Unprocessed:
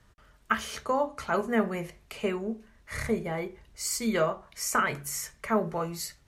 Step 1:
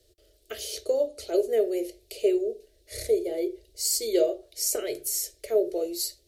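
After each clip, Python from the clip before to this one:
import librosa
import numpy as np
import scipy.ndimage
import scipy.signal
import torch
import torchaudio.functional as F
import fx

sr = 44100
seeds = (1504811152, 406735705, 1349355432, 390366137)

y = fx.curve_eq(x, sr, hz=(100.0, 190.0, 350.0, 630.0, 990.0, 4300.0, 6300.0, 13000.0), db=(0, -30, 15, 8, -25, 13, 8, 14))
y = y * librosa.db_to_amplitude(-5.0)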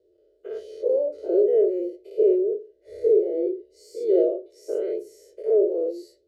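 y = fx.spec_dilate(x, sr, span_ms=120)
y = fx.bandpass_q(y, sr, hz=400.0, q=2.2)
y = y + 0.36 * np.pad(y, (int(2.0 * sr / 1000.0), 0))[:len(y)]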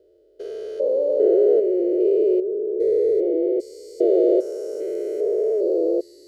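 y = fx.spec_steps(x, sr, hold_ms=400)
y = y * librosa.db_to_amplitude(7.0)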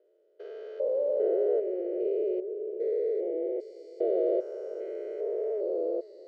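y = fx.bandpass_edges(x, sr, low_hz=670.0, high_hz=2100.0)
y = y + 10.0 ** (-18.5 / 20.0) * np.pad(y, (int(494 * sr / 1000.0), 0))[:len(y)]
y = y * librosa.db_to_amplitude(-2.0)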